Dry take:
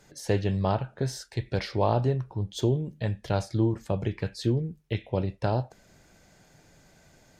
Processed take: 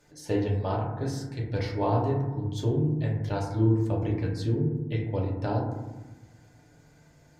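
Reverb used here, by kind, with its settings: FDN reverb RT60 1.1 s, low-frequency decay 1.6×, high-frequency decay 0.25×, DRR -2.5 dB; trim -6.5 dB

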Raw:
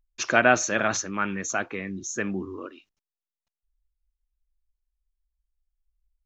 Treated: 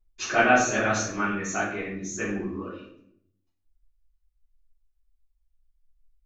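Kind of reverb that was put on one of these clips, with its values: simulated room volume 140 m³, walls mixed, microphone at 3.3 m; trim -11.5 dB

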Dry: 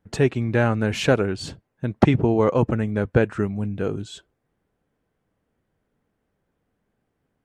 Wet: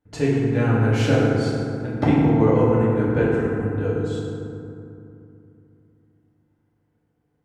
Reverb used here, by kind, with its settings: FDN reverb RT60 2.7 s, low-frequency decay 1.35×, high-frequency decay 0.4×, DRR -7.5 dB; trim -8.5 dB

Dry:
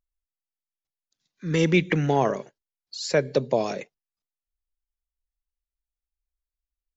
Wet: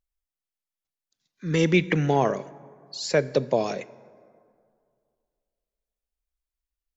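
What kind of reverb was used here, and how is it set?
plate-style reverb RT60 2.3 s, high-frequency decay 0.5×, DRR 19 dB

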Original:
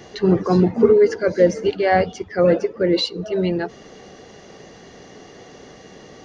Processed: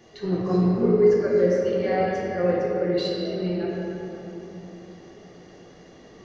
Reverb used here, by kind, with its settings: simulated room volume 200 m³, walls hard, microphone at 0.85 m; trim -13 dB

